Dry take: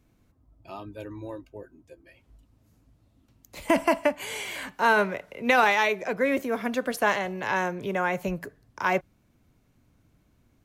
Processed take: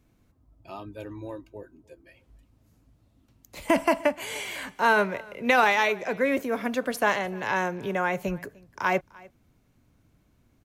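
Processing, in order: echo 0.3 s -24 dB

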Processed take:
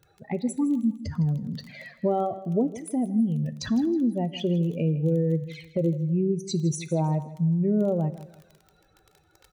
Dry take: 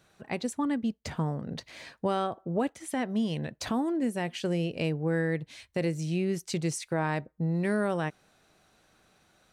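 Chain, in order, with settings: spectral contrast raised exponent 2.3; crackle 15/s -38 dBFS; envelope flanger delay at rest 2.4 ms, full sweep at -29.5 dBFS; feedback echo 0.16 s, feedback 31%, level -15.5 dB; two-slope reverb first 0.62 s, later 2 s, from -18 dB, DRR 15 dB; gain +5.5 dB

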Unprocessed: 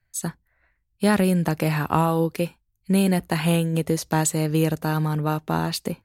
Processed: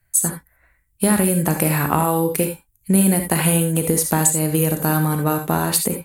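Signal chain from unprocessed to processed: resonant high shelf 6900 Hz +11 dB, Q 1.5; compressor, threshold -20 dBFS, peak gain reduction 10.5 dB; non-linear reverb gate 0.1 s rising, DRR 5.5 dB; gain +6 dB

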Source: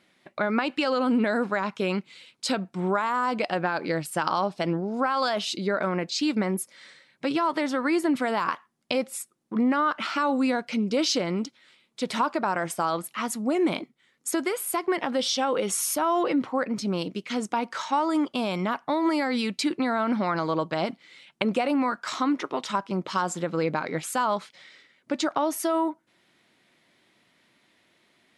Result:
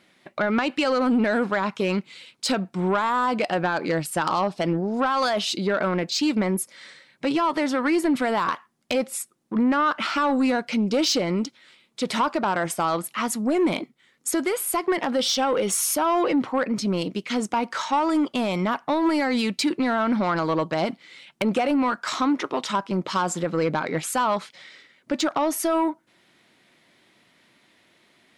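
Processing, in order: soft clip -19 dBFS, distortion -17 dB; gain +4.5 dB

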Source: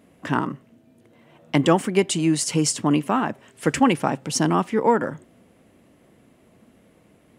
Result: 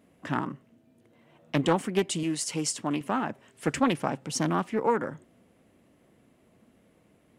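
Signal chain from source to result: 2.23–3.01 low shelf 220 Hz -9.5 dB; Doppler distortion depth 0.3 ms; gain -6.5 dB

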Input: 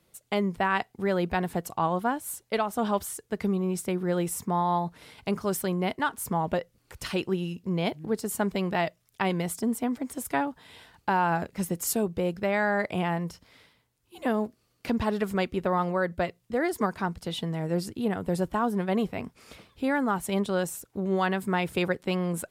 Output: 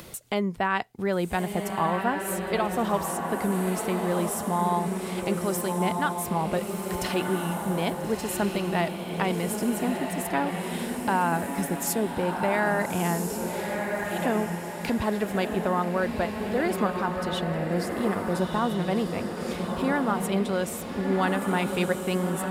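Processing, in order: upward compressor, threshold -28 dBFS; diffused feedback echo 1.34 s, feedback 44%, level -3.5 dB

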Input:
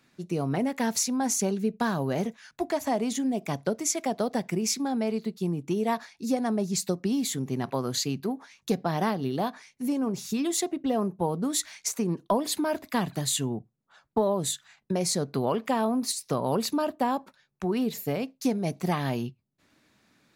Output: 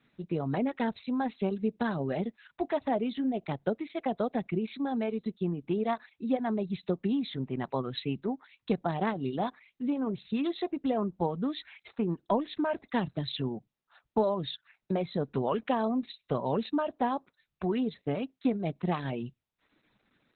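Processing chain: reverb removal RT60 0.63 s; 16.3–18.37 dynamic EQ 2300 Hz, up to -4 dB, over -56 dBFS, Q 6.4; gain -1.5 dB; Opus 8 kbps 48000 Hz

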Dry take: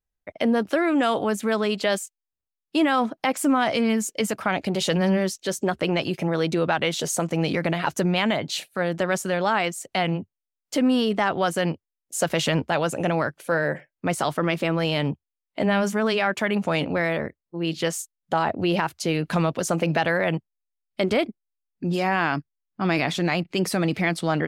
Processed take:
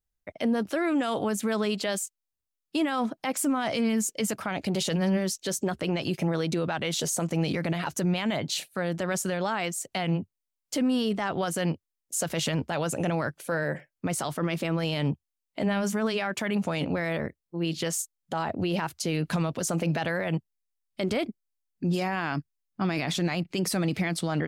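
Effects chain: tone controls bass +4 dB, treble +5 dB; limiter -16 dBFS, peak gain reduction 7 dB; gain -3 dB

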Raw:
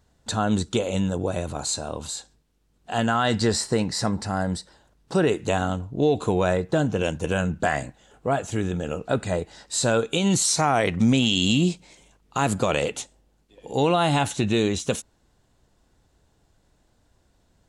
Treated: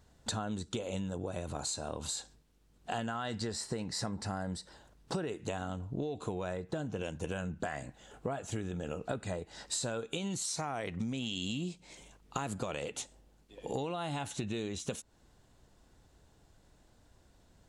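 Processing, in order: compressor 16:1, threshold -33 dBFS, peak gain reduction 18.5 dB

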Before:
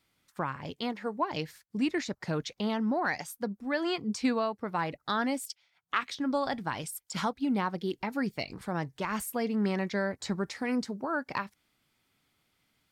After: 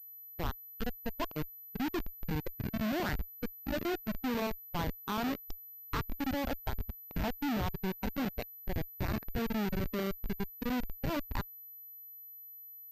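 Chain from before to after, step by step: on a send: diffused feedback echo 0.655 s, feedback 51%, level -16 dB; on the sum: Schmitt trigger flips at -27.5 dBFS; spectral noise reduction 9 dB; pulse-width modulation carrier 12000 Hz; gain +1.5 dB

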